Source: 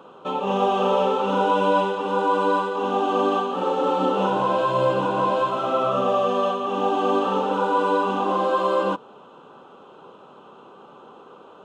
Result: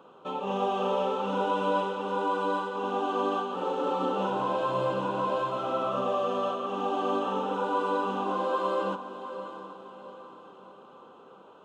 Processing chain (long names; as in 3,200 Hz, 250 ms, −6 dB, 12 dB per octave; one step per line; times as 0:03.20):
0:07.20–0:07.64: notch filter 4,500 Hz, Q 9.1
on a send: feedback delay with all-pass diffusion 685 ms, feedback 44%, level −11 dB
on the sum: level −7.5 dB